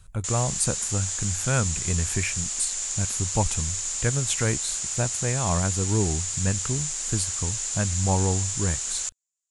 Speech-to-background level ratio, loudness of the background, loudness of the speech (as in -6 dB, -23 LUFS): -1.0 dB, -27.0 LUFS, -28.0 LUFS